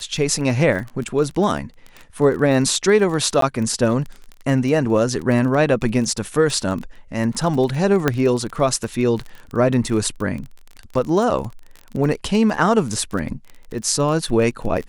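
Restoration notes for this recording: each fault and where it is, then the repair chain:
surface crackle 24 per second −26 dBFS
0:03.41–0:03.42: drop-out 13 ms
0:08.08: click −3 dBFS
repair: click removal
repair the gap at 0:03.41, 13 ms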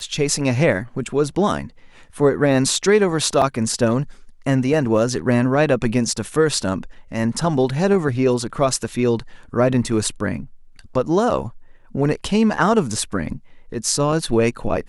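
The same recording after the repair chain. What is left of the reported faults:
none of them is left

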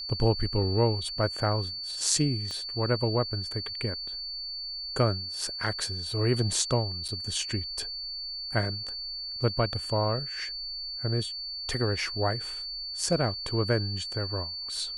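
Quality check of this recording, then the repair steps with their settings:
whistle 4,500 Hz −34 dBFS
0:02.51: click −23 dBFS
0:07.08–0:07.09: drop-out 6.3 ms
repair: click removal
notch filter 4,500 Hz, Q 30
repair the gap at 0:07.08, 6.3 ms

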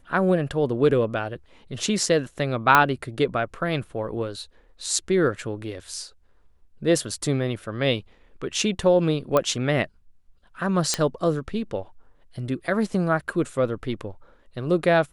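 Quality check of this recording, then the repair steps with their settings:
0:02.75: click −2 dBFS
0:09.37: click −8 dBFS
0:10.94: click −6 dBFS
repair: click removal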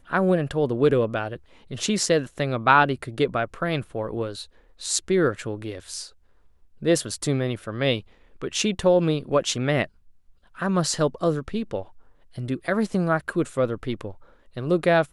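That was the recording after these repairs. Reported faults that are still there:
none of them is left

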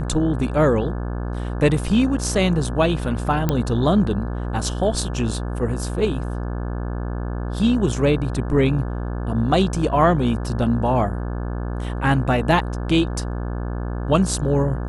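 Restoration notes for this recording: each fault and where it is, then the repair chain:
mains buzz 60 Hz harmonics 29 −26 dBFS
0:03.49: click −7 dBFS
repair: click removal
hum removal 60 Hz, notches 29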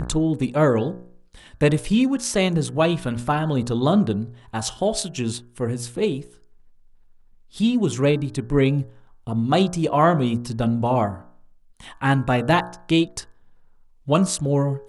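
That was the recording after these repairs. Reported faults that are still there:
none of them is left

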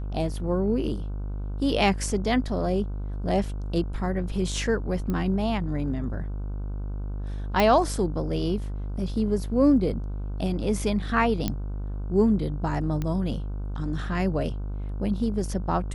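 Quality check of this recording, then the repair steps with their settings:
mains buzz 50 Hz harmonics 31 −31 dBFS
0:05.10: click −18 dBFS
0:07.60: click −9 dBFS
0:11.48: click −12 dBFS
0:13.02: click −17 dBFS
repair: click removal
hum removal 50 Hz, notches 31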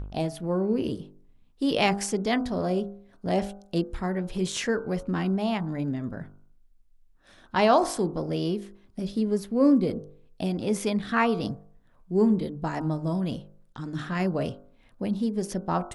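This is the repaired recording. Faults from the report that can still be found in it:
none of them is left

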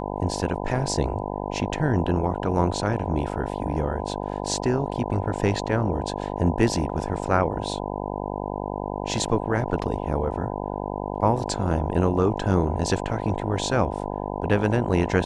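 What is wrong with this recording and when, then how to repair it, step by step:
mains buzz 50 Hz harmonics 20 −30 dBFS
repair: hum removal 50 Hz, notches 20

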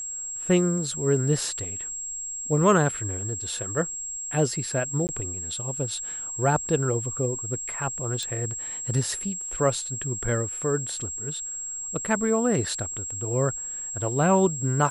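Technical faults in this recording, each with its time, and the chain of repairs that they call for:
whistle 7,600 Hz −31 dBFS
0:05.07–0:05.09: drop-out 19 ms
0:08.23: click −18 dBFS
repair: click removal
notch filter 7,600 Hz, Q 30
repair the gap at 0:05.07, 19 ms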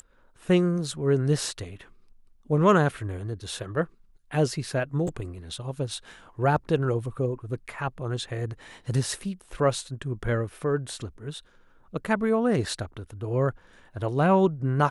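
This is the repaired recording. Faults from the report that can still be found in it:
0:08.23: click

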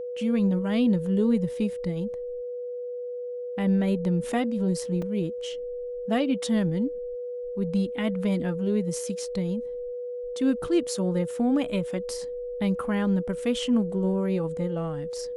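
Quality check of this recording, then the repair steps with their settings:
whistle 490 Hz −31 dBFS
0:05.02: drop-out 3.3 ms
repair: notch filter 490 Hz, Q 30
repair the gap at 0:05.02, 3.3 ms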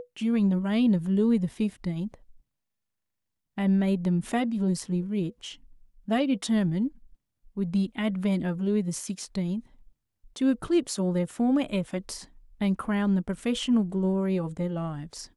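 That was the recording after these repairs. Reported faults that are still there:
none of them is left

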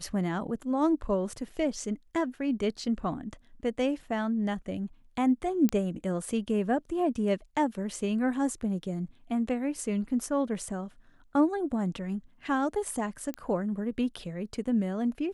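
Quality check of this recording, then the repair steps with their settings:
0:05.69: click −14 dBFS
0:13.34: click −21 dBFS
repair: click removal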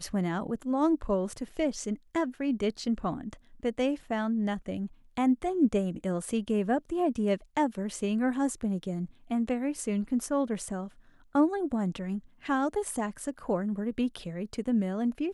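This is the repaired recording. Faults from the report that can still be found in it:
none of them is left

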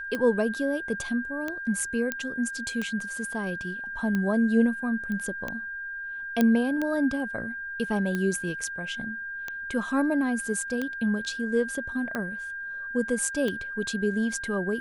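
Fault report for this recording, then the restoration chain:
scratch tick 45 rpm −17 dBFS
whistle 1,600 Hz −33 dBFS
0:02.12: click −12 dBFS
0:05.12: click −23 dBFS
0:06.41: click −10 dBFS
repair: click removal
notch filter 1,600 Hz, Q 30

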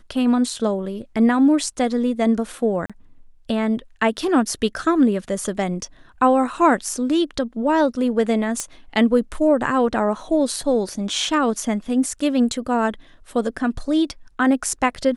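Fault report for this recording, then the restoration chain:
0:02.86–0:02.90: drop-out 36 ms
0:08.60: click −10 dBFS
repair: click removal
repair the gap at 0:02.86, 36 ms

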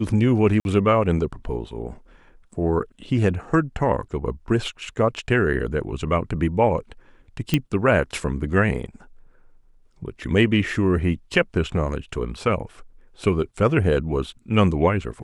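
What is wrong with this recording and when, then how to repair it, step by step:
0:00.60–0:00.65: drop-out 51 ms
0:07.54: click −6 dBFS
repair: click removal
repair the gap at 0:00.60, 51 ms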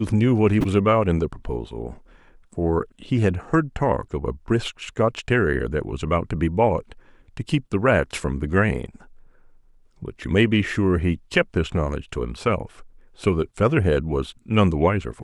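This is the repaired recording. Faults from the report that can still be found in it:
none of them is left

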